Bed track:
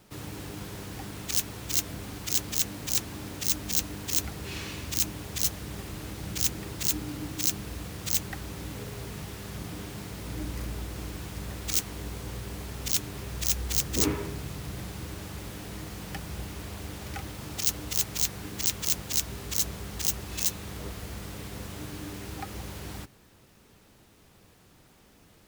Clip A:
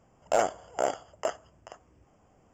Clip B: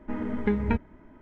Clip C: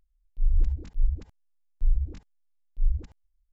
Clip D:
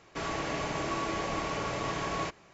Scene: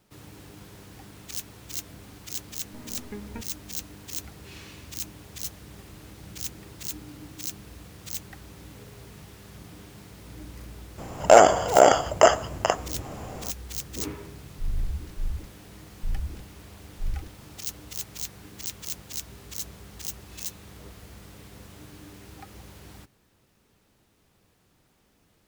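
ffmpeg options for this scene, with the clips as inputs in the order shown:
-filter_complex "[0:a]volume=0.422[s0];[1:a]alimiter=level_in=20:limit=0.891:release=50:level=0:latency=1[s1];[3:a]asoftclip=type=tanh:threshold=0.0891[s2];[2:a]atrim=end=1.21,asetpts=PTS-STARTPTS,volume=0.211,afade=t=in:d=0.004:c=hsin,afade=t=out:st=1.206:d=0.004:c=hsin,adelay=2650[s3];[s1]atrim=end=2.53,asetpts=PTS-STARTPTS,volume=0.794,afade=t=in:d=0.004:c=hsin,afade=t=out:st=2.526:d=0.004:c=hsin,adelay=484218S[s4];[s2]atrim=end=3.52,asetpts=PTS-STARTPTS,volume=0.841,afade=t=in:d=0.004:c=hsin,afade=t=out:st=3.516:d=0.004:c=hsin,adelay=14220[s5];[s0][s3][s4][s5]amix=inputs=4:normalize=0"

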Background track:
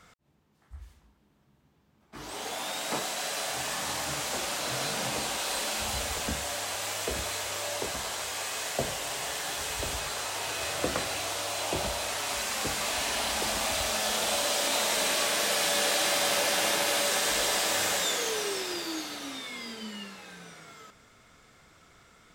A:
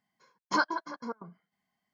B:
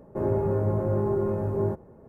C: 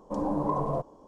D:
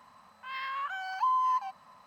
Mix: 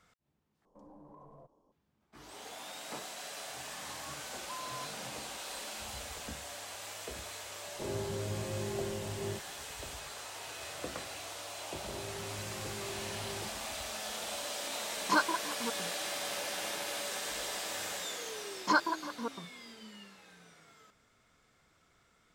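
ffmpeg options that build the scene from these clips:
-filter_complex "[2:a]asplit=2[s0][s1];[1:a]asplit=2[s2][s3];[0:a]volume=0.282[s4];[3:a]acompressor=threshold=0.0112:ratio=2.5:attack=2.7:release=71:knee=1:detection=peak[s5];[s1]acompressor=threshold=0.0398:ratio=6:attack=3.2:release=140:knee=1:detection=peak[s6];[s4]asplit=2[s7][s8];[s7]atrim=end=0.654[s9];[s5]atrim=end=1.07,asetpts=PTS-STARTPTS,volume=0.133[s10];[s8]atrim=start=1.716[s11];[4:a]atrim=end=2.06,asetpts=PTS-STARTPTS,volume=0.126,afade=t=in:d=0.004:c=hsin,afade=t=out:st=2.056:d=0.004:c=hsin,adelay=3270[s12];[s0]atrim=end=2.08,asetpts=PTS-STARTPTS,volume=0.237,afade=t=in:d=0.004:c=hsin,afade=t=out:st=2.076:d=0.004:c=hsin,adelay=7640[s13];[s6]atrim=end=2.08,asetpts=PTS-STARTPTS,volume=0.237,afade=t=in:d=0.004:c=hsin,afade=t=out:st=2.076:d=0.004:c=hsin,adelay=11730[s14];[s2]atrim=end=1.93,asetpts=PTS-STARTPTS,volume=0.891,afade=t=in:d=0.004:c=hsin,afade=t=out:st=1.926:d=0.004:c=hsin,adelay=14580[s15];[s3]atrim=end=1.93,asetpts=PTS-STARTPTS,volume=0.944,afade=t=in:d=0.004:c=hsin,afade=t=out:st=1.926:d=0.004:c=hsin,adelay=18160[s16];[s9][s10]acrossfade=d=0.004:c1=hsin:c2=hsin[s17];[s17][s11]acrossfade=d=0.004:c1=hsin:c2=hsin[s18];[s18][s12][s13][s14][s15][s16]amix=inputs=6:normalize=0"

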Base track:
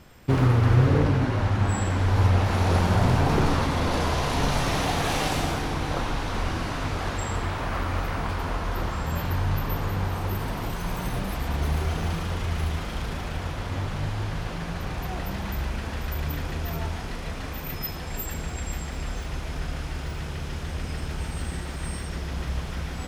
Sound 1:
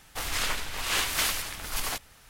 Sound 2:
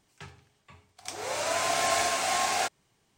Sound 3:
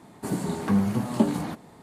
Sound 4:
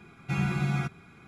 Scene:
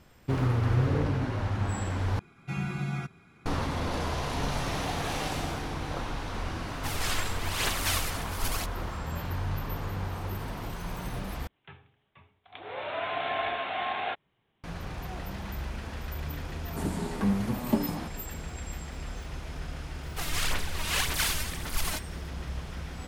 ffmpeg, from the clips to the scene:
-filter_complex "[1:a]asplit=2[s0][s1];[0:a]volume=0.473[s2];[s0]aphaser=in_gain=1:out_gain=1:delay=3:decay=0.5:speed=1:type=triangular[s3];[2:a]aresample=8000,aresample=44100[s4];[s1]aphaser=in_gain=1:out_gain=1:delay=3.3:decay=0.59:speed=1.8:type=sinusoidal[s5];[s2]asplit=3[s6][s7][s8];[s6]atrim=end=2.194[s9];[4:a]atrim=end=1.27,asetpts=PTS-STARTPTS,volume=0.596[s10];[s7]atrim=start=3.456:end=11.474[s11];[s4]atrim=end=3.17,asetpts=PTS-STARTPTS,volume=0.668[s12];[s8]atrim=start=14.636[s13];[s3]atrim=end=2.29,asetpts=PTS-STARTPTS,volume=0.631,afade=t=in:d=0.004:c=hsin,afade=t=out:st=2.286:d=0.004:c=hsin,adelay=6680[s14];[3:a]atrim=end=1.82,asetpts=PTS-STARTPTS,volume=0.596,afade=t=in:d=0.004:c=hsin,afade=t=out:st=1.816:d=0.004:c=hsin,adelay=16530[s15];[s5]atrim=end=2.29,asetpts=PTS-STARTPTS,volume=0.668,afade=t=in:d=0.004:c=hsin,afade=t=out:st=2.286:d=0.004:c=hsin,adelay=20010[s16];[s9][s10]acrossfade=d=0.004:c1=hsin:c2=hsin[s17];[s17][s11]acrossfade=d=0.004:c1=hsin:c2=hsin[s18];[s18][s12]acrossfade=d=0.004:c1=hsin:c2=hsin[s19];[s19][s13]acrossfade=d=0.004:c1=hsin:c2=hsin[s20];[s20][s14][s15][s16]amix=inputs=4:normalize=0"

